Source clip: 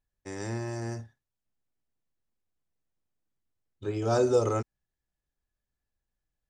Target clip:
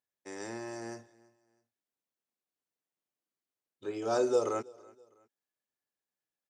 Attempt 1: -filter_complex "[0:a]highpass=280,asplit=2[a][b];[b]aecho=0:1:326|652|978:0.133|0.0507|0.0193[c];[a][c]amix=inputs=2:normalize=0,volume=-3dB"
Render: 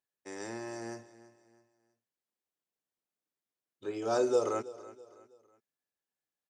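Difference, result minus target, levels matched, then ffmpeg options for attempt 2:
echo-to-direct +6.5 dB
-filter_complex "[0:a]highpass=280,asplit=2[a][b];[b]aecho=0:1:326|652:0.0631|0.024[c];[a][c]amix=inputs=2:normalize=0,volume=-3dB"

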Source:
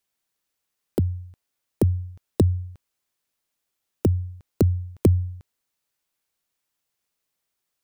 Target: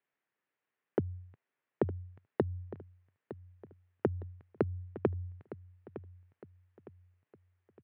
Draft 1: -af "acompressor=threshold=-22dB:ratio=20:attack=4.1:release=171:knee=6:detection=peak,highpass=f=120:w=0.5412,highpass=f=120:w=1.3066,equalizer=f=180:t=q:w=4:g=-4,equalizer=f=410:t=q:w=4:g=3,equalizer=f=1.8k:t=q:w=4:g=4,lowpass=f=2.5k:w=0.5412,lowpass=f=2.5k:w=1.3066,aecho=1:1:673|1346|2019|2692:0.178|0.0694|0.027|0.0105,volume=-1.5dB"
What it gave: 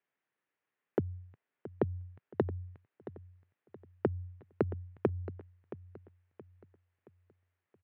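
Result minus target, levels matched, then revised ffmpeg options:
echo 0.237 s early
-af "acompressor=threshold=-22dB:ratio=20:attack=4.1:release=171:knee=6:detection=peak,highpass=f=120:w=0.5412,highpass=f=120:w=1.3066,equalizer=f=180:t=q:w=4:g=-4,equalizer=f=410:t=q:w=4:g=3,equalizer=f=1.8k:t=q:w=4:g=4,lowpass=f=2.5k:w=0.5412,lowpass=f=2.5k:w=1.3066,aecho=1:1:910|1820|2730|3640:0.178|0.0694|0.027|0.0105,volume=-1.5dB"

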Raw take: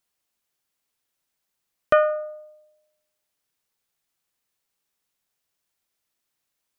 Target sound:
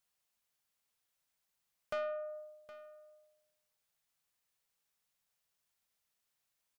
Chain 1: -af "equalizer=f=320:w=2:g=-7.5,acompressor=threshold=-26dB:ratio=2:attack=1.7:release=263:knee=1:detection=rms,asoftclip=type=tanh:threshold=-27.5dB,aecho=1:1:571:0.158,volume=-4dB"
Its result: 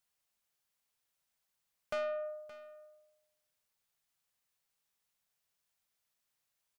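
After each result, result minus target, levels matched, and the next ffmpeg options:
echo 0.195 s early; compressor: peak gain reduction -3 dB
-af "equalizer=f=320:w=2:g=-7.5,acompressor=threshold=-26dB:ratio=2:attack=1.7:release=263:knee=1:detection=rms,asoftclip=type=tanh:threshold=-27.5dB,aecho=1:1:766:0.158,volume=-4dB"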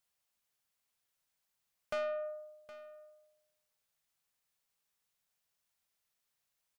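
compressor: peak gain reduction -3 dB
-af "equalizer=f=320:w=2:g=-7.5,acompressor=threshold=-32.5dB:ratio=2:attack=1.7:release=263:knee=1:detection=rms,asoftclip=type=tanh:threshold=-27.5dB,aecho=1:1:766:0.158,volume=-4dB"

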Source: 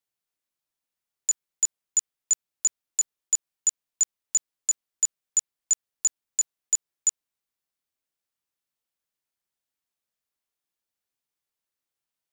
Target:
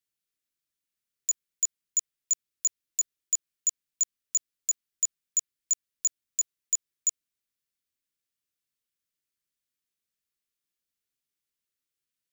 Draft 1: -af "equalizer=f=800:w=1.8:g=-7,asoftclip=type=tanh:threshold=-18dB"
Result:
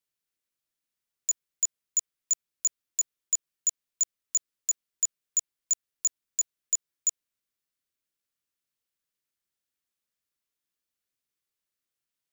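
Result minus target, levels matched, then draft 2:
1000 Hz band +3.0 dB
-af "equalizer=f=800:w=1.8:g=-17,asoftclip=type=tanh:threshold=-18dB"

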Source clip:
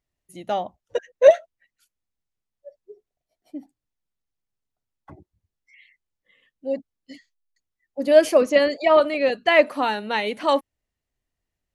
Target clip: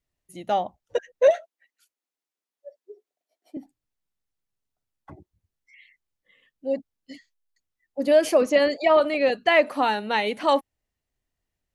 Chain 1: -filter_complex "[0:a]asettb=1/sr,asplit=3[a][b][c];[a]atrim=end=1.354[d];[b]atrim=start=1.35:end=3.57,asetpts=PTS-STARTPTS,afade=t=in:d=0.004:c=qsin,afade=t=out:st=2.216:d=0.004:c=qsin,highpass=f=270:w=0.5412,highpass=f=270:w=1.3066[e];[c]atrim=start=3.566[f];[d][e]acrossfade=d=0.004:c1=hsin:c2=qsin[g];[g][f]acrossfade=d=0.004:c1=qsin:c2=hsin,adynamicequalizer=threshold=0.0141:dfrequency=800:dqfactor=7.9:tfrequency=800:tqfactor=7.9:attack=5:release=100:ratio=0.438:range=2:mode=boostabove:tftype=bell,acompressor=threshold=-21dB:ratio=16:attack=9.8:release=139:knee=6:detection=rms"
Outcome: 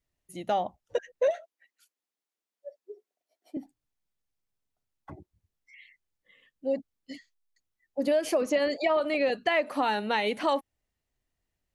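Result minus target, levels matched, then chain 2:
compressor: peak gain reduction +9.5 dB
-filter_complex "[0:a]asettb=1/sr,asplit=3[a][b][c];[a]atrim=end=1.354[d];[b]atrim=start=1.35:end=3.57,asetpts=PTS-STARTPTS,afade=t=in:d=0.004:c=qsin,afade=t=out:st=2.216:d=0.004:c=qsin,highpass=f=270:w=0.5412,highpass=f=270:w=1.3066[e];[c]atrim=start=3.566[f];[d][e]acrossfade=d=0.004:c1=hsin:c2=qsin[g];[g][f]acrossfade=d=0.004:c1=qsin:c2=hsin,adynamicequalizer=threshold=0.0141:dfrequency=800:dqfactor=7.9:tfrequency=800:tqfactor=7.9:attack=5:release=100:ratio=0.438:range=2:mode=boostabove:tftype=bell,acompressor=threshold=-11dB:ratio=16:attack=9.8:release=139:knee=6:detection=rms"

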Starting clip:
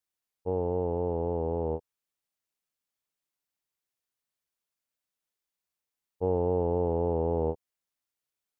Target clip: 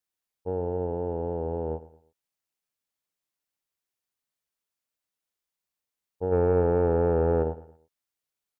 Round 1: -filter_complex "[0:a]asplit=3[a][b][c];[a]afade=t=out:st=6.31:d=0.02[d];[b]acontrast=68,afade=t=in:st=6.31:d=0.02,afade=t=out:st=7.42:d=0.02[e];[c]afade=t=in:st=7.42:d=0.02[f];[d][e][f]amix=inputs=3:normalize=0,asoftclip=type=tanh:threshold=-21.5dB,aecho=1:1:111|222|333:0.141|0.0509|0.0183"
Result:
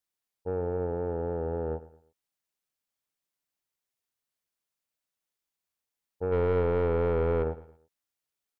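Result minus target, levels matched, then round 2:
soft clip: distortion +8 dB
-filter_complex "[0:a]asplit=3[a][b][c];[a]afade=t=out:st=6.31:d=0.02[d];[b]acontrast=68,afade=t=in:st=6.31:d=0.02,afade=t=out:st=7.42:d=0.02[e];[c]afade=t=in:st=7.42:d=0.02[f];[d][e][f]amix=inputs=3:normalize=0,asoftclip=type=tanh:threshold=-13.5dB,aecho=1:1:111|222|333:0.141|0.0509|0.0183"

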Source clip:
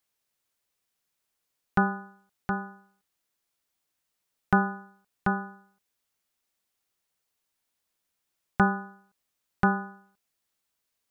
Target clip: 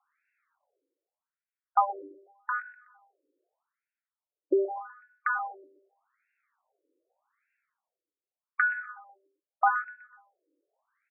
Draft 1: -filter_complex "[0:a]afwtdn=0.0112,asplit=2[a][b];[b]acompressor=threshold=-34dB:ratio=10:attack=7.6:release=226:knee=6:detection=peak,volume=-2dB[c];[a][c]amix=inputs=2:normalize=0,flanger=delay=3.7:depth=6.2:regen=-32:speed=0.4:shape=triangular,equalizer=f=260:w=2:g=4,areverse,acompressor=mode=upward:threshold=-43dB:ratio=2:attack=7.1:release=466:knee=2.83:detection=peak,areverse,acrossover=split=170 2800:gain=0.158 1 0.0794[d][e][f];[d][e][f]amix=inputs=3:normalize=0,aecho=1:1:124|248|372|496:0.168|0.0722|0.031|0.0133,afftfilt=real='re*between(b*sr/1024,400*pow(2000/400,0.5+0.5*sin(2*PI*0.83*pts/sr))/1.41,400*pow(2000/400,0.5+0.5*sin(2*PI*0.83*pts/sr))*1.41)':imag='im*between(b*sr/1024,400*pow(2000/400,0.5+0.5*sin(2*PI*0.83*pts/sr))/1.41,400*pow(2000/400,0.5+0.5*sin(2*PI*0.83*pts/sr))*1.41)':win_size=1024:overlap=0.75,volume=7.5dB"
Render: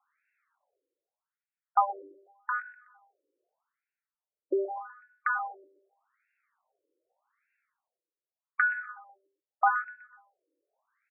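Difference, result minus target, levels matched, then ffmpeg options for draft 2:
250 Hz band -3.5 dB
-filter_complex "[0:a]afwtdn=0.0112,asplit=2[a][b];[b]acompressor=threshold=-34dB:ratio=10:attack=7.6:release=226:knee=6:detection=peak,volume=-2dB[c];[a][c]amix=inputs=2:normalize=0,flanger=delay=3.7:depth=6.2:regen=-32:speed=0.4:shape=triangular,equalizer=f=260:w=2:g=15,areverse,acompressor=mode=upward:threshold=-43dB:ratio=2:attack=7.1:release=466:knee=2.83:detection=peak,areverse,acrossover=split=170 2800:gain=0.158 1 0.0794[d][e][f];[d][e][f]amix=inputs=3:normalize=0,aecho=1:1:124|248|372|496:0.168|0.0722|0.031|0.0133,afftfilt=real='re*between(b*sr/1024,400*pow(2000/400,0.5+0.5*sin(2*PI*0.83*pts/sr))/1.41,400*pow(2000/400,0.5+0.5*sin(2*PI*0.83*pts/sr))*1.41)':imag='im*between(b*sr/1024,400*pow(2000/400,0.5+0.5*sin(2*PI*0.83*pts/sr))/1.41,400*pow(2000/400,0.5+0.5*sin(2*PI*0.83*pts/sr))*1.41)':win_size=1024:overlap=0.75,volume=7.5dB"

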